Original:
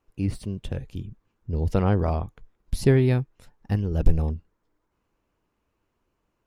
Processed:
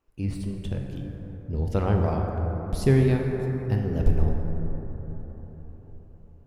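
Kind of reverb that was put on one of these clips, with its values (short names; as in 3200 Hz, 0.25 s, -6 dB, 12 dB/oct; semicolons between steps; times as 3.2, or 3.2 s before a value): plate-style reverb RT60 4.6 s, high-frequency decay 0.3×, DRR 1 dB; gain -3 dB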